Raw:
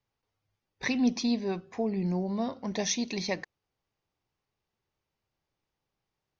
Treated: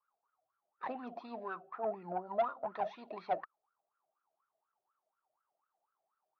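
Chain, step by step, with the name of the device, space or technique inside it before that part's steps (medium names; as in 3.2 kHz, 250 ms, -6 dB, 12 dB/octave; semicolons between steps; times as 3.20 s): wah-wah guitar rig (wah-wah 4.1 Hz 640–1400 Hz, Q 15; valve stage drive 42 dB, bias 0.25; cabinet simulation 97–3600 Hz, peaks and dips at 170 Hz +3 dB, 370 Hz +4 dB, 630 Hz +4 dB, 1.3 kHz +6 dB, 2.1 kHz -6 dB); trim +14.5 dB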